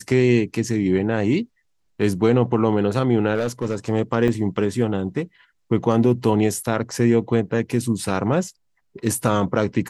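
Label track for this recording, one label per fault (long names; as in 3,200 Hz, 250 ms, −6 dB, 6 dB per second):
3.350000	3.750000	clipping −17 dBFS
4.280000	4.280000	drop-out 2 ms
6.910000	6.910000	drop-out 2.5 ms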